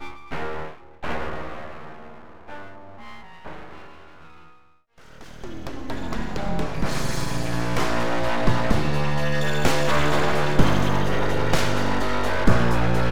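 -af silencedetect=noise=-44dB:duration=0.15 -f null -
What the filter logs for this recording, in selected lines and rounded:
silence_start: 4.58
silence_end: 4.98 | silence_duration: 0.40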